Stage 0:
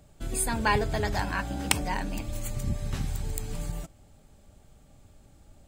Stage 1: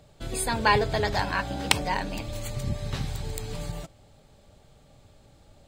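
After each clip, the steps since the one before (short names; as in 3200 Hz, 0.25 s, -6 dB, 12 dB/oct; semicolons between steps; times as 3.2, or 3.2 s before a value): graphic EQ 125/500/1000/2000/4000 Hz +6/+8/+5/+4/+10 dB; gain -3.5 dB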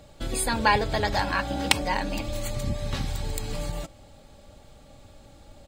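comb 3.6 ms, depth 36%; in parallel at +0.5 dB: compressor, threshold -34 dBFS, peak gain reduction 18.5 dB; on the sum: crackle 29/s -53 dBFS; gain -1.5 dB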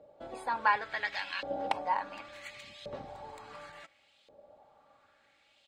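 LFO band-pass saw up 0.7 Hz 500–3400 Hz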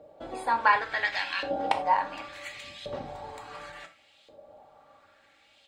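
non-linear reverb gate 0.12 s falling, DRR 5.5 dB; gain +5 dB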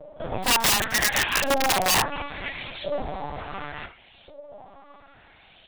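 LPC vocoder at 8 kHz pitch kept; wrapped overs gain 23 dB; pre-echo 38 ms -19 dB; gain +8.5 dB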